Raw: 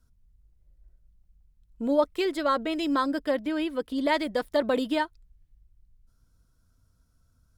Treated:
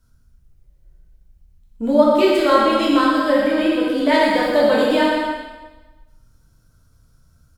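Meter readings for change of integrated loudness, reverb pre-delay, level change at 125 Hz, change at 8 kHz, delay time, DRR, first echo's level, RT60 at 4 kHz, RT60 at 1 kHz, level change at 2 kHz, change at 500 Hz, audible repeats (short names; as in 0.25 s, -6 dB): +11.0 dB, 4 ms, n/a, n/a, 0.124 s, -6.5 dB, -5.5 dB, 1.2 s, 1.2 s, +11.5 dB, +11.5 dB, 1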